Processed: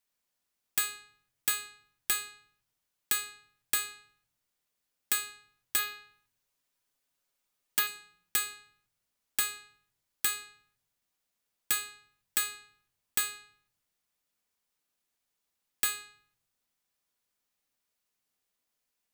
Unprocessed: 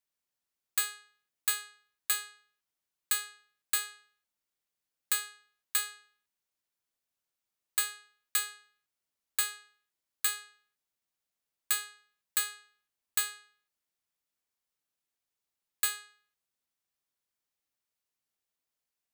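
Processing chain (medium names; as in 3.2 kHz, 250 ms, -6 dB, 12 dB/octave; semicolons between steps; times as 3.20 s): 5.78–7.87 s: comb 7.3 ms, depth 63%; compression 1.5:1, threshold -37 dBFS, peak gain reduction 5.5 dB; integer overflow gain 20.5 dB; reverberation RT60 0.55 s, pre-delay 4 ms, DRR 9 dB; trim +4.5 dB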